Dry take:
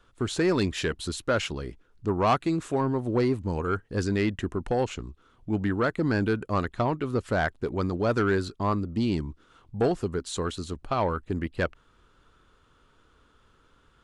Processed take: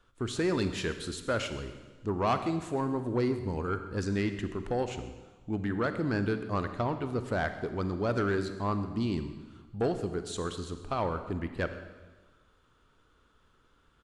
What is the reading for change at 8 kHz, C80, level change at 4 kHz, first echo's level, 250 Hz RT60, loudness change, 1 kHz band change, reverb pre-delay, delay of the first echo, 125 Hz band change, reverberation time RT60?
-4.5 dB, 11.0 dB, -4.5 dB, -19.0 dB, 1.3 s, -4.5 dB, -4.5 dB, 35 ms, 0.131 s, -4.0 dB, 1.3 s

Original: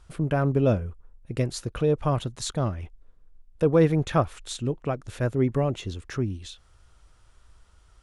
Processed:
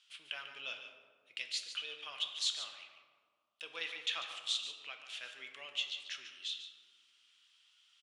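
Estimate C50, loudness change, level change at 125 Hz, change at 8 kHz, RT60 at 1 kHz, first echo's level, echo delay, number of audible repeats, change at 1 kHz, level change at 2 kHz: 5.5 dB, -13.5 dB, under -40 dB, -6.5 dB, 1.8 s, -11.0 dB, 0.144 s, 1, -19.5 dB, -4.0 dB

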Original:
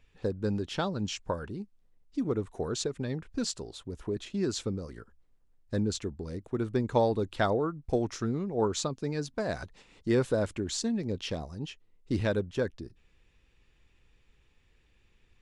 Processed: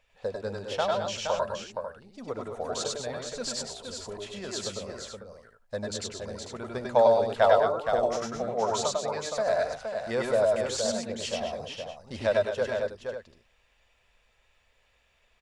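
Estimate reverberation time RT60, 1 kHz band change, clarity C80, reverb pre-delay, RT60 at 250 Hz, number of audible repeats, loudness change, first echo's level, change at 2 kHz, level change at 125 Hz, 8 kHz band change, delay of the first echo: none, +7.5 dB, none, none, none, 4, +3.0 dB, -0.5 dB, +4.5 dB, -8.5 dB, +4.0 dB, 97 ms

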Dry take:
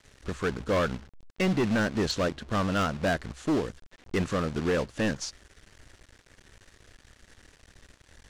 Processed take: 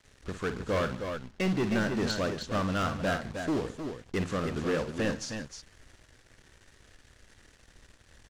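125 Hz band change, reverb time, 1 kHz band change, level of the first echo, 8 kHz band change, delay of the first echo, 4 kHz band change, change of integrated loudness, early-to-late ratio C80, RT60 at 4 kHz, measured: -2.0 dB, none, -2.5 dB, -10.5 dB, -2.5 dB, 53 ms, -2.5 dB, -2.5 dB, none, none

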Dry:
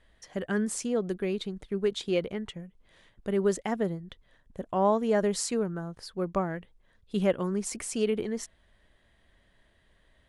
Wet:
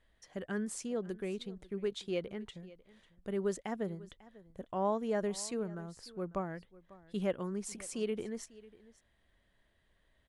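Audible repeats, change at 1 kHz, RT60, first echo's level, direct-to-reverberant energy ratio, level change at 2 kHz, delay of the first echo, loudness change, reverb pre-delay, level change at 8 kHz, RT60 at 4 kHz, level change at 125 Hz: 1, -8.0 dB, none, -20.0 dB, none, -8.0 dB, 0.546 s, -8.0 dB, none, -8.0 dB, none, -8.0 dB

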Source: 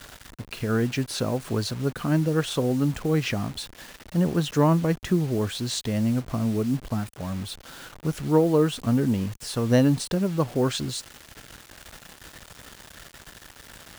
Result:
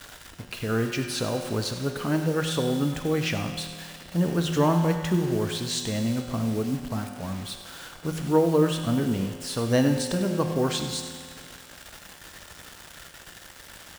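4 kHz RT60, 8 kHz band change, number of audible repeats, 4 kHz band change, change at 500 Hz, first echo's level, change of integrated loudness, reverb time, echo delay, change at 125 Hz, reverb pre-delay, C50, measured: 1.9 s, +1.0 dB, 1, +1.5 dB, -0.5 dB, -14.0 dB, -1.5 dB, 2.0 s, 98 ms, -2.0 dB, 6 ms, 6.0 dB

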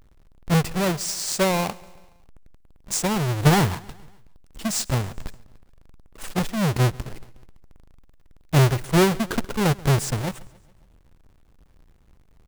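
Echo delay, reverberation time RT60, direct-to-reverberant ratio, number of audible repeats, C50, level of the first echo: 0.14 s, none, none, 3, none, -23.0 dB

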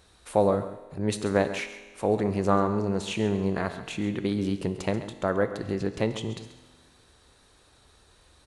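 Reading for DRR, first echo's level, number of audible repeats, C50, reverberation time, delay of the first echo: 9.0 dB, -13.5 dB, 1, 9.5 dB, 1.5 s, 0.135 s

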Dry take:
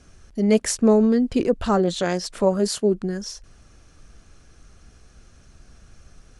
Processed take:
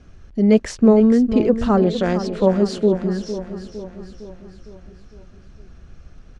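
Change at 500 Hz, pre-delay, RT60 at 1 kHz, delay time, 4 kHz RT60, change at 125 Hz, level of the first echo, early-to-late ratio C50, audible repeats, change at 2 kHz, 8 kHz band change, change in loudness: +3.0 dB, none, none, 0.457 s, none, +5.0 dB, -11.0 dB, none, 5, +0.5 dB, -10.0 dB, +3.5 dB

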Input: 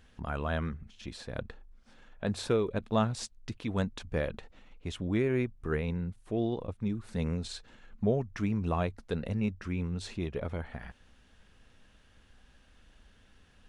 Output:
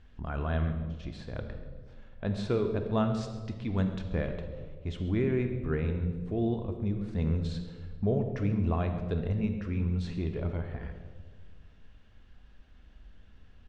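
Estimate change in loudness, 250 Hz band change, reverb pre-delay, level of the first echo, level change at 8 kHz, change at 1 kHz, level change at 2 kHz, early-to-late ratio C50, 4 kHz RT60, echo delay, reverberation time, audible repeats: +1.5 dB, +1.5 dB, 3 ms, -16.5 dB, under -10 dB, -1.5 dB, -2.5 dB, 7.5 dB, 1.0 s, 0.135 s, 1.5 s, 1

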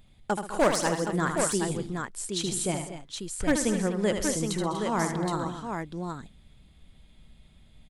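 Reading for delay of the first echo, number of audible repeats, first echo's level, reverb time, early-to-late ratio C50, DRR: 77 ms, 5, -7.0 dB, none, none, none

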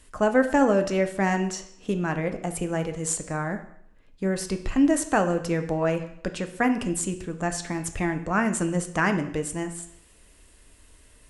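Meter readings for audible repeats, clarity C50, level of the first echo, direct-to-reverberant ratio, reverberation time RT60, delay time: none, 11.0 dB, none, 7.0 dB, 0.70 s, none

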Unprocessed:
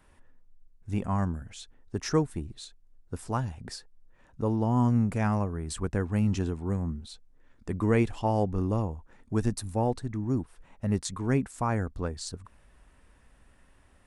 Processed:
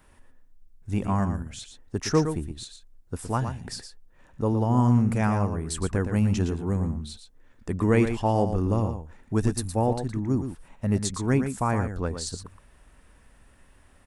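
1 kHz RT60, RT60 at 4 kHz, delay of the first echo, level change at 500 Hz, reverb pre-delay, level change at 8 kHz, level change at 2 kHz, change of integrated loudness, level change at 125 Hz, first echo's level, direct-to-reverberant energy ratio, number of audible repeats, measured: none, none, 0.116 s, +3.5 dB, none, +5.5 dB, +3.5 dB, +3.5 dB, +3.5 dB, -8.5 dB, none, 1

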